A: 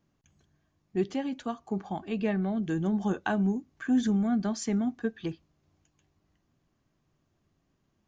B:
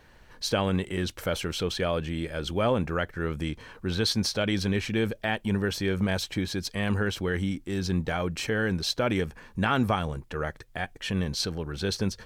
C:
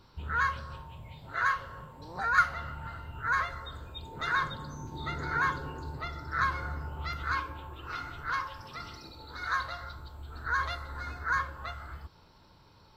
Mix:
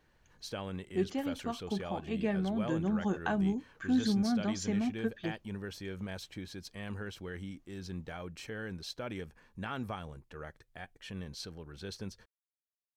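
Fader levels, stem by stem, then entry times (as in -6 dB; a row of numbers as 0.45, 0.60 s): -3.5 dB, -14.0 dB, off; 0.00 s, 0.00 s, off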